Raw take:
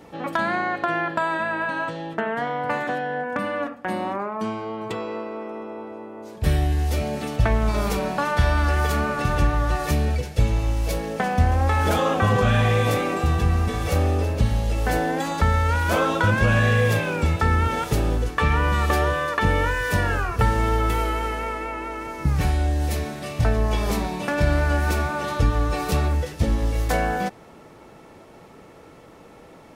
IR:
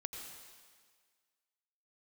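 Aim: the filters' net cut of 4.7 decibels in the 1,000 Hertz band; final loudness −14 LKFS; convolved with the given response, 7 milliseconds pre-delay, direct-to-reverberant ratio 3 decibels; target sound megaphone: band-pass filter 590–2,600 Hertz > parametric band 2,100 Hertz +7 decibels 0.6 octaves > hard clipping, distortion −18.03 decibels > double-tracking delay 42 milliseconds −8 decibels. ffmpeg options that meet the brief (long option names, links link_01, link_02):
-filter_complex "[0:a]equalizer=frequency=1000:width_type=o:gain=-6,asplit=2[link_01][link_02];[1:a]atrim=start_sample=2205,adelay=7[link_03];[link_02][link_03]afir=irnorm=-1:irlink=0,volume=-1.5dB[link_04];[link_01][link_04]amix=inputs=2:normalize=0,highpass=590,lowpass=2600,equalizer=frequency=2100:width_type=o:width=0.6:gain=7,asoftclip=type=hard:threshold=-19.5dB,asplit=2[link_05][link_06];[link_06]adelay=42,volume=-8dB[link_07];[link_05][link_07]amix=inputs=2:normalize=0,volume=13dB"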